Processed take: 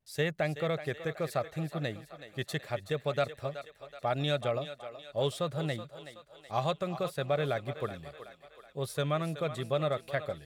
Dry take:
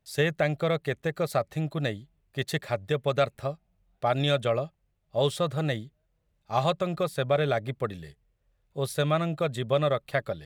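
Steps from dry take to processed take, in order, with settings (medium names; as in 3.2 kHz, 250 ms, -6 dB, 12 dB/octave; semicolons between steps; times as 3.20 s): vibrato 0.74 Hz 41 cents; thinning echo 375 ms, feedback 57%, high-pass 440 Hz, level -11 dB; trim -5.5 dB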